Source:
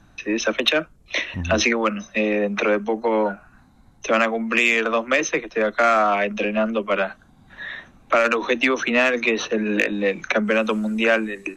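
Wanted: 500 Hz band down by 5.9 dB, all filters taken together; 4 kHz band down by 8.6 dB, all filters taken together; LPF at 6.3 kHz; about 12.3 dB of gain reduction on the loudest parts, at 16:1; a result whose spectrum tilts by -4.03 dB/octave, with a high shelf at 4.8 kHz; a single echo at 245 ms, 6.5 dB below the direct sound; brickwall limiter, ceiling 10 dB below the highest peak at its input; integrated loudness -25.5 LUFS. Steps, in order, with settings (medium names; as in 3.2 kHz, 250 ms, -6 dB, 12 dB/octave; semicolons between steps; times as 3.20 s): low-pass 6.3 kHz; peaking EQ 500 Hz -7 dB; peaking EQ 4 kHz -8 dB; treble shelf 4.8 kHz -7 dB; compression 16:1, threshold -29 dBFS; peak limiter -24 dBFS; delay 245 ms -6.5 dB; trim +8.5 dB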